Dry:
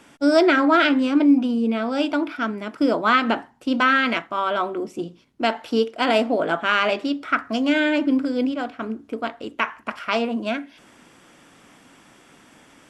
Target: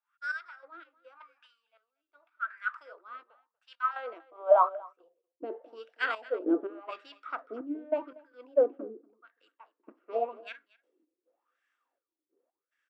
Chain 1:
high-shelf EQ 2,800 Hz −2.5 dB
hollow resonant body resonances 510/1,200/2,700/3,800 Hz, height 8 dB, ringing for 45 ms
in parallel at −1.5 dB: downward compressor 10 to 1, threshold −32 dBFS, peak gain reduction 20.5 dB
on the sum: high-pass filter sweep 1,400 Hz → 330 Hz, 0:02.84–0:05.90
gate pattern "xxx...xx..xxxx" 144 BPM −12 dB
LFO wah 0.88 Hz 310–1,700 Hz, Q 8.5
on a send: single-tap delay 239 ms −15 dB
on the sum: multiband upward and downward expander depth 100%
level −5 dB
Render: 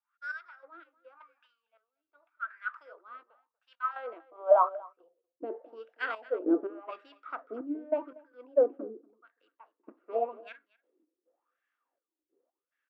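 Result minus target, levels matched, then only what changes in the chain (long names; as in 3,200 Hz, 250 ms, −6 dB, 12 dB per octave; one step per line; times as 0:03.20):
4,000 Hz band −6.0 dB
change: high-shelf EQ 2,800 Hz +9 dB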